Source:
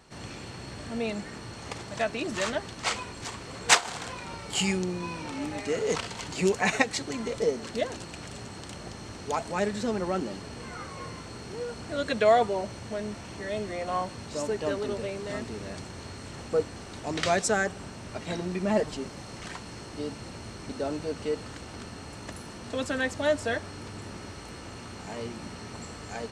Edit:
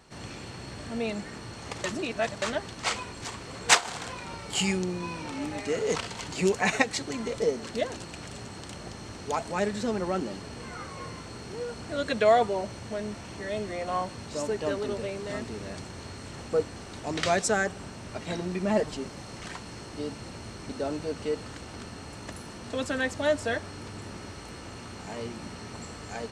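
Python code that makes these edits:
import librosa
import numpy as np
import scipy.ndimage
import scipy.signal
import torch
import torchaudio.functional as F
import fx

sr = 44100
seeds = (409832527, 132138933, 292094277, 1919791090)

y = fx.edit(x, sr, fx.reverse_span(start_s=1.84, length_s=0.58), tone=tone)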